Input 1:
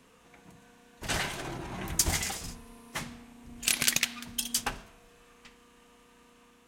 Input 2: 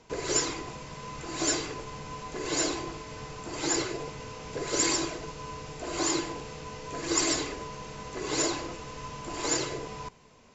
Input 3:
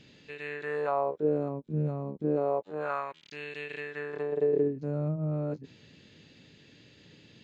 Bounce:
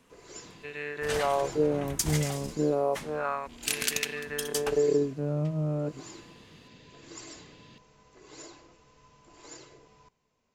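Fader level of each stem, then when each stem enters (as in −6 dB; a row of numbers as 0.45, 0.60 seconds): −3.5, −19.0, +1.5 decibels; 0.00, 0.00, 0.35 seconds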